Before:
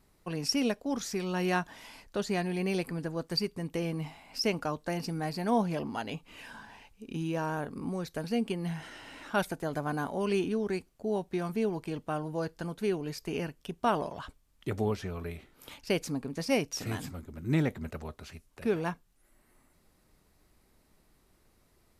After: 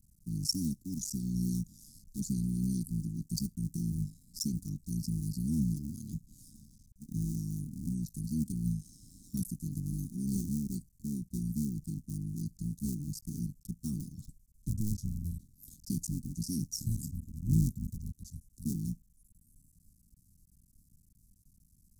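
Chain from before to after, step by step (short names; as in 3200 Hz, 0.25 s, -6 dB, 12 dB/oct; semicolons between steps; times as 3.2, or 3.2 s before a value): cycle switcher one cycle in 3, muted; inverse Chebyshev band-stop 480–2900 Hz, stop band 50 dB; gain +5.5 dB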